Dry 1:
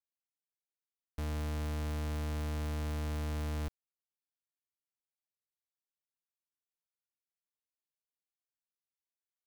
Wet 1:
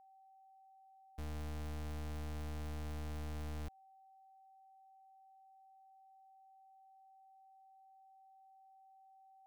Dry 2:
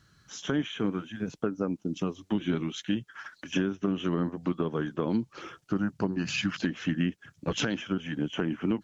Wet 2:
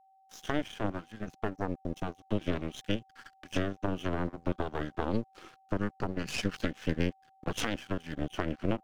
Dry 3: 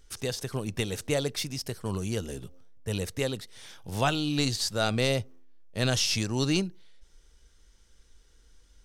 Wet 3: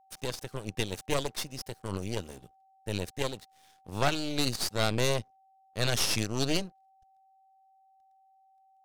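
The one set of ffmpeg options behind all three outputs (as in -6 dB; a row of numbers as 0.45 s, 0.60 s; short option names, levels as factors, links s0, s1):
-af "aeval=exprs='0.251*(cos(1*acos(clip(val(0)/0.251,-1,1)))-cos(1*PI/2))+0.112*(cos(4*acos(clip(val(0)/0.251,-1,1)))-cos(4*PI/2))+0.002*(cos(8*acos(clip(val(0)/0.251,-1,1)))-cos(8*PI/2))':c=same,aeval=exprs='sgn(val(0))*max(abs(val(0))-0.00473,0)':c=same,aeval=exprs='val(0)+0.00158*sin(2*PI*770*n/s)':c=same,volume=0.562"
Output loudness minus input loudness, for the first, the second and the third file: -8.0 LU, -4.0 LU, -2.5 LU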